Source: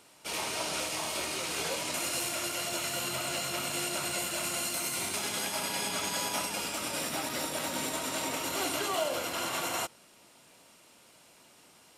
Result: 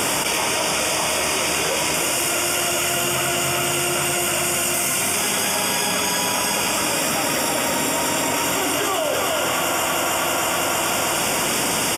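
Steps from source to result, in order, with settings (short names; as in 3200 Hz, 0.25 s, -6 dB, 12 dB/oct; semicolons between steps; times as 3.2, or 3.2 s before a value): Butterworth band-stop 4100 Hz, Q 4.1; feedback echo 0.32 s, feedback 51%, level -6 dB; fast leveller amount 100%; gain +6 dB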